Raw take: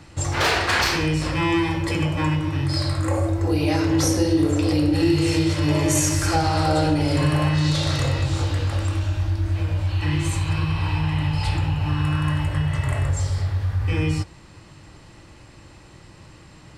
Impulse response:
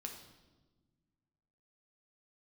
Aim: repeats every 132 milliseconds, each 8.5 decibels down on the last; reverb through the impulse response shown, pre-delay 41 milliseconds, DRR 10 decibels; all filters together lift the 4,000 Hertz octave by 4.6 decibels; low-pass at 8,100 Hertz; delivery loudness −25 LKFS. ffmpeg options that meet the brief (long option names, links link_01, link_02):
-filter_complex "[0:a]lowpass=8100,equalizer=frequency=4000:width_type=o:gain=6,aecho=1:1:132|264|396|528:0.376|0.143|0.0543|0.0206,asplit=2[link_01][link_02];[1:a]atrim=start_sample=2205,adelay=41[link_03];[link_02][link_03]afir=irnorm=-1:irlink=0,volume=-7dB[link_04];[link_01][link_04]amix=inputs=2:normalize=0,volume=-5dB"